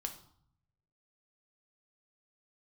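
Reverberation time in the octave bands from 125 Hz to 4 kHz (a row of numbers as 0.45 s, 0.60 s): 1.3 s, 0.90 s, 0.55 s, 0.65 s, 0.45 s, 0.50 s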